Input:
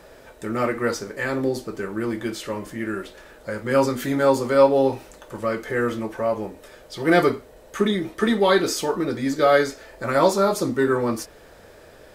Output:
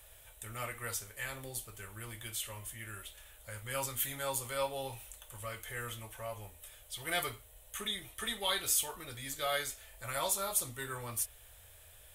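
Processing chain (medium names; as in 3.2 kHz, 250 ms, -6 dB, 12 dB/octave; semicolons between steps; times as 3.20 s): FFT filter 100 Hz 0 dB, 170 Hz -20 dB, 330 Hz -25 dB, 700 Hz -12 dB, 1.6 kHz -10 dB, 3.3 kHz +3 dB, 4.8 kHz -9 dB, 9.5 kHz +11 dB; trim -5 dB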